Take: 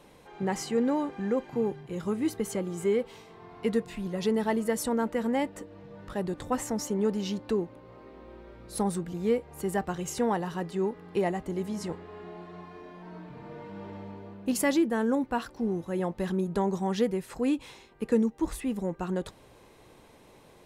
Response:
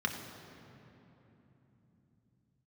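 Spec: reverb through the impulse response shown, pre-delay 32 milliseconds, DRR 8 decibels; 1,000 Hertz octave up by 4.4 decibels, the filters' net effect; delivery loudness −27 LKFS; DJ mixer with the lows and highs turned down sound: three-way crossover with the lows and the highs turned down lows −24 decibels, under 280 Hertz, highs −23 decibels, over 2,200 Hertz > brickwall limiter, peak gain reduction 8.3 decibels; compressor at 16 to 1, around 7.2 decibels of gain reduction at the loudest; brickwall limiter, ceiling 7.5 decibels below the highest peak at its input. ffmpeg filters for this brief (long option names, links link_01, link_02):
-filter_complex "[0:a]equalizer=frequency=1000:width_type=o:gain=6,acompressor=threshold=-26dB:ratio=16,alimiter=level_in=1.5dB:limit=-24dB:level=0:latency=1,volume=-1.5dB,asplit=2[link_01][link_02];[1:a]atrim=start_sample=2205,adelay=32[link_03];[link_02][link_03]afir=irnorm=-1:irlink=0,volume=-14.5dB[link_04];[link_01][link_04]amix=inputs=2:normalize=0,acrossover=split=280 2200:gain=0.0631 1 0.0708[link_05][link_06][link_07];[link_05][link_06][link_07]amix=inputs=3:normalize=0,volume=15dB,alimiter=limit=-16.5dB:level=0:latency=1"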